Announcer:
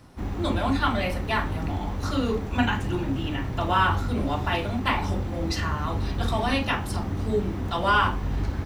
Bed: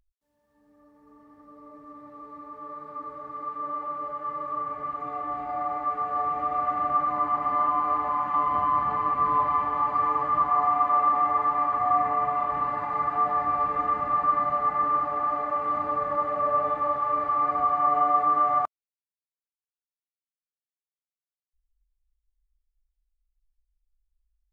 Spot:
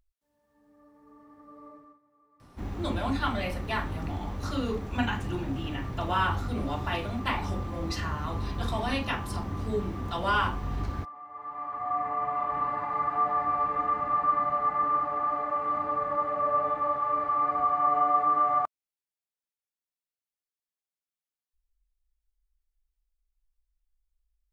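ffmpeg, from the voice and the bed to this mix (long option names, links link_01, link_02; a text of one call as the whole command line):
ffmpeg -i stem1.wav -i stem2.wav -filter_complex "[0:a]adelay=2400,volume=-5dB[link_01];[1:a]volume=19.5dB,afade=type=out:start_time=1.66:duration=0.33:silence=0.0841395,afade=type=in:start_time=11.29:duration=1.32:silence=0.1[link_02];[link_01][link_02]amix=inputs=2:normalize=0" out.wav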